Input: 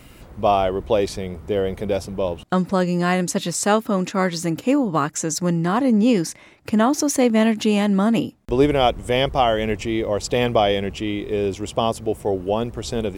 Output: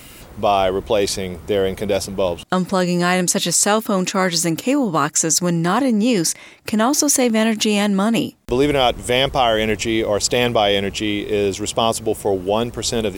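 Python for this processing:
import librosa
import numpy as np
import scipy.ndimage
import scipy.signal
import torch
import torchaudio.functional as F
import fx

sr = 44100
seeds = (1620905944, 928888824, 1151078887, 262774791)

p1 = fx.high_shelf(x, sr, hz=2900.0, db=8.5)
p2 = fx.over_compress(p1, sr, threshold_db=-20.0, ratio=-1.0)
p3 = p1 + (p2 * librosa.db_to_amplitude(-3.0))
p4 = fx.low_shelf(p3, sr, hz=160.0, db=-4.5)
y = p4 * librosa.db_to_amplitude(-1.5)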